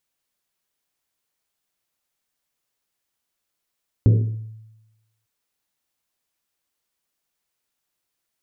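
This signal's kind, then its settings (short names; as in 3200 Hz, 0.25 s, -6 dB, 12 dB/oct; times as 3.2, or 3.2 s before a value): Risset drum length 1.20 s, pitch 110 Hz, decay 1.06 s, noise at 320 Hz, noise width 310 Hz, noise 15%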